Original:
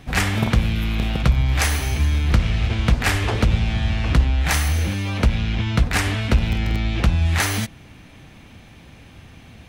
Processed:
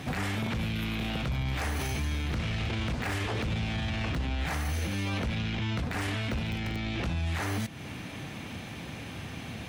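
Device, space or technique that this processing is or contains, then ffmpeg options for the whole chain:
podcast mastering chain: -af "highpass=100,deesser=0.65,acompressor=threshold=-34dB:ratio=2.5,alimiter=level_in=5.5dB:limit=-24dB:level=0:latency=1:release=10,volume=-5.5dB,volume=6.5dB" -ar 44100 -c:a libmp3lame -b:a 96k

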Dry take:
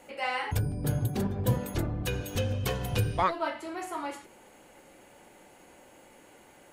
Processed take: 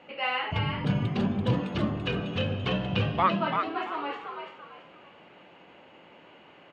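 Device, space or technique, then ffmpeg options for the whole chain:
frequency-shifting delay pedal into a guitar cabinet: -filter_complex "[0:a]asettb=1/sr,asplit=3[link_01][link_02][link_03];[link_01]atrim=end=0.604[link_04];[link_02]atrim=start=0.6:end=1.91,asetpts=PTS-STARTPTS,afade=type=in:duration=0.004:curve=qsin,afade=type=out:start_time=1.306:duration=0.004:curve=qsin,aemphasis=mode=production:type=50kf[link_05];[link_03]atrim=start=1.906[link_06];[link_04][link_05]acrossfade=duration=0.004:curve1=hsin:curve2=qsin[link_07];[link_07][link_06]acrossfade=duration=0.004:curve1=qsin:curve2=hsin,asplit=5[link_08][link_09][link_10][link_11][link_12];[link_09]adelay=337,afreqshift=91,volume=-5.5dB[link_13];[link_10]adelay=674,afreqshift=182,volume=-15.4dB[link_14];[link_11]adelay=1011,afreqshift=273,volume=-25.3dB[link_15];[link_12]adelay=1348,afreqshift=364,volume=-35.2dB[link_16];[link_08][link_13][link_14][link_15][link_16]amix=inputs=5:normalize=0,highpass=89,equalizer=frequency=170:width_type=q:width=4:gain=6,equalizer=frequency=1200:width_type=q:width=4:gain=5,equalizer=frequency=2800:width_type=q:width=4:gain=8,lowpass=frequency=3800:width=0.5412,lowpass=frequency=3800:width=1.3066"

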